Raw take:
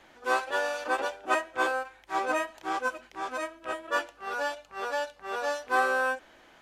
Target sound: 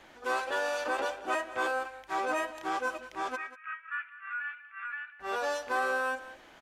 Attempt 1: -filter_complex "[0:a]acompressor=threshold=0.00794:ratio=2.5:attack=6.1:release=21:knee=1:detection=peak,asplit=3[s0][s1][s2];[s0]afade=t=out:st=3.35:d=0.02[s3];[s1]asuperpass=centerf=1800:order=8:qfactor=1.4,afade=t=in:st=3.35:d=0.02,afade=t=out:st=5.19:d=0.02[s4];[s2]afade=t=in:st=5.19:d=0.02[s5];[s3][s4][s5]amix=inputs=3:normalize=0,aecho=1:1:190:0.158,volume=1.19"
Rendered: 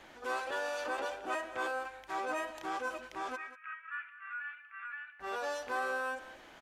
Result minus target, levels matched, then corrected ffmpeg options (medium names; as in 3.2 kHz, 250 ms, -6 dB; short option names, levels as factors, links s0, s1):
compression: peak gain reduction +5 dB
-filter_complex "[0:a]acompressor=threshold=0.0211:ratio=2.5:attack=6.1:release=21:knee=1:detection=peak,asplit=3[s0][s1][s2];[s0]afade=t=out:st=3.35:d=0.02[s3];[s1]asuperpass=centerf=1800:order=8:qfactor=1.4,afade=t=in:st=3.35:d=0.02,afade=t=out:st=5.19:d=0.02[s4];[s2]afade=t=in:st=5.19:d=0.02[s5];[s3][s4][s5]amix=inputs=3:normalize=0,aecho=1:1:190:0.158,volume=1.19"